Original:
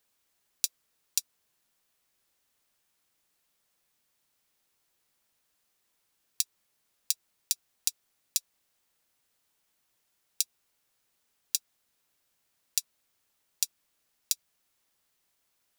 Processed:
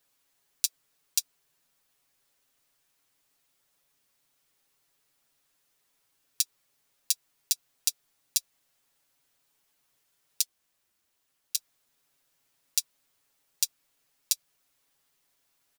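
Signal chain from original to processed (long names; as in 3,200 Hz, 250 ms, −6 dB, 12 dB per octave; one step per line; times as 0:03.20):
comb filter 7.2 ms, depth 83%
0:10.41–0:11.56: ring modulation 410 Hz → 99 Hz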